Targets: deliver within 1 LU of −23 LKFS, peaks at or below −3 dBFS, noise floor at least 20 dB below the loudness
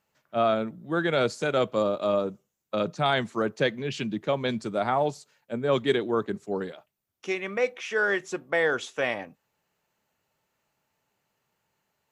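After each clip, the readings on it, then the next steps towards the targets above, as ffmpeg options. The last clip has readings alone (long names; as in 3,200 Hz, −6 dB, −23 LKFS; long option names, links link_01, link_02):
integrated loudness −27.5 LKFS; sample peak −11.5 dBFS; target loudness −23.0 LKFS
→ -af "volume=4.5dB"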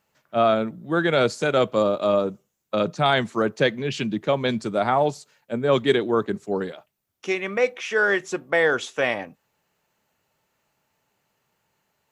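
integrated loudness −23.0 LKFS; sample peak −7.0 dBFS; background noise floor −74 dBFS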